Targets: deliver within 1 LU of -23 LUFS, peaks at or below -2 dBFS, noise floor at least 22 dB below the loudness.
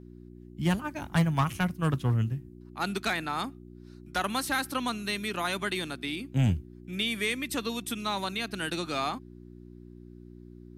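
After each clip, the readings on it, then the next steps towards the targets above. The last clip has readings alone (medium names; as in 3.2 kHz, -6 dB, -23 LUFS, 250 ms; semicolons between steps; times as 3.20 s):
clipped samples 0.3%; clipping level -18.5 dBFS; hum 60 Hz; highest harmonic 360 Hz; hum level -47 dBFS; loudness -30.5 LUFS; peak level -18.5 dBFS; loudness target -23.0 LUFS
-> clip repair -18.5 dBFS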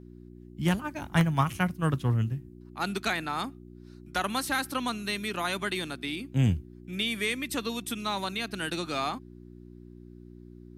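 clipped samples 0.0%; hum 60 Hz; highest harmonic 360 Hz; hum level -47 dBFS
-> de-hum 60 Hz, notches 6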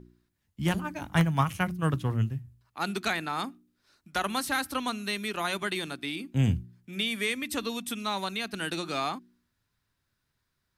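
hum not found; loudness -30.5 LUFS; peak level -10.0 dBFS; loudness target -23.0 LUFS
-> trim +7.5 dB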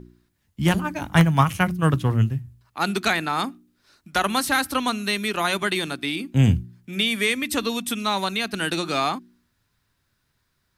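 loudness -23.0 LUFS; peak level -2.5 dBFS; noise floor -72 dBFS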